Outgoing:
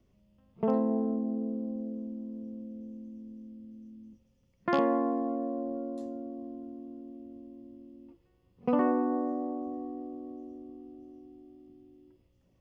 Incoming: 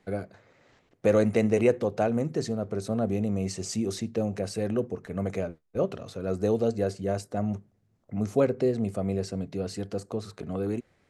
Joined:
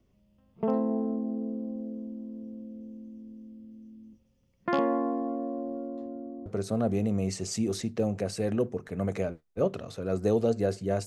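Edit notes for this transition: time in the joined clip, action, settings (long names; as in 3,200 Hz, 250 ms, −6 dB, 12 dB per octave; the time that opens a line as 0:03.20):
outgoing
0:05.87–0:06.46: low-pass filter 3,200 Hz → 1,200 Hz
0:06.46: continue with incoming from 0:02.64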